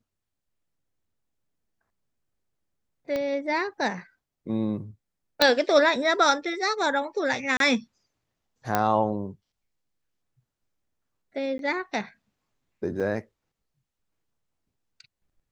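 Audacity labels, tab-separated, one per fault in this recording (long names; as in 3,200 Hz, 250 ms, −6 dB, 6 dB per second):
3.160000	3.160000	click −17 dBFS
5.420000	5.420000	click −4 dBFS
7.570000	7.600000	drop-out 32 ms
8.750000	8.750000	click −8 dBFS
11.580000	11.590000	drop-out 12 ms
13.000000	13.010000	drop-out 5.1 ms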